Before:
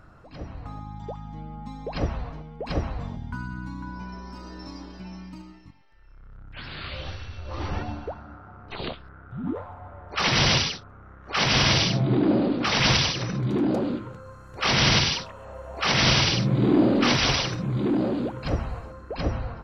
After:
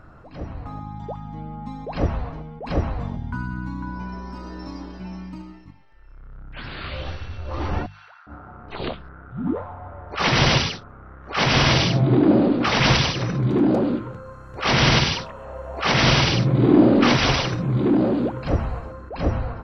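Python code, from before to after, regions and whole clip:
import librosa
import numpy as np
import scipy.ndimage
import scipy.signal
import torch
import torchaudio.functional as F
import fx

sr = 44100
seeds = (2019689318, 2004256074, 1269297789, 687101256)

y = fx.chain(x, sr, fx.highpass(hz=1400.0, slope=24),
    fx.over_compress(threshold_db=-52.0, ratio=-0.5), at=(7.86, 8.27))
y = fx.high_shelf(y, sr, hz=3200.0, db=-9.0)
y = fx.hum_notches(y, sr, base_hz=50, count=4)
y = fx.attack_slew(y, sr, db_per_s=180.0)
y = F.gain(torch.from_numpy(y), 5.5).numpy()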